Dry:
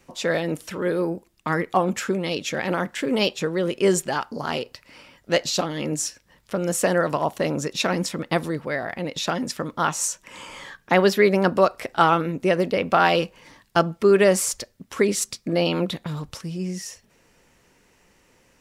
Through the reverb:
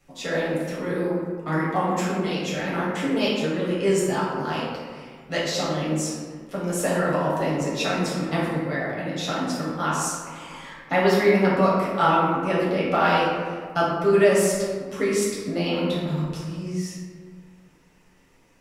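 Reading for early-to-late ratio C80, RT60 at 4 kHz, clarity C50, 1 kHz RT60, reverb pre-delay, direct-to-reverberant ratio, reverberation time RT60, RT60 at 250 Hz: 2.5 dB, 0.90 s, -0.5 dB, 1.6 s, 5 ms, -6.5 dB, 1.6 s, 2.1 s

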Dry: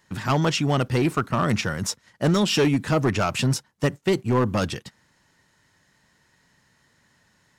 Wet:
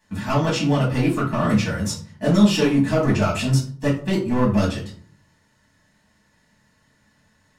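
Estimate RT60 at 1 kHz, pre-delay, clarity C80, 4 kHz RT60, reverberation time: 0.45 s, 4 ms, 13.0 dB, 0.30 s, 0.50 s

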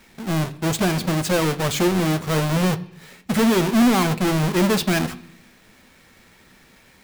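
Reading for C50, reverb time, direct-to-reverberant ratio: 18.0 dB, 0.70 s, 10.0 dB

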